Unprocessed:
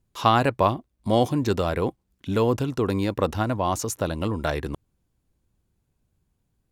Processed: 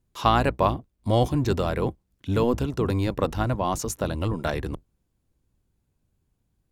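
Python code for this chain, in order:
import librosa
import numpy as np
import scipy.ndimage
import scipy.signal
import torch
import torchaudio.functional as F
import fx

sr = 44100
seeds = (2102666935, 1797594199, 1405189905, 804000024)

y = fx.octave_divider(x, sr, octaves=1, level_db=-3.0)
y = y * librosa.db_to_amplitude(-1.5)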